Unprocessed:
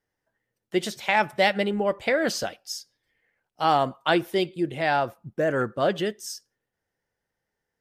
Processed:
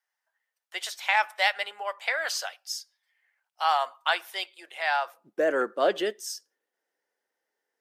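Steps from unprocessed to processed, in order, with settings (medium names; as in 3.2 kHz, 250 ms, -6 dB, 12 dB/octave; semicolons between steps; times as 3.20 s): high-pass 800 Hz 24 dB/octave, from 5.14 s 310 Hz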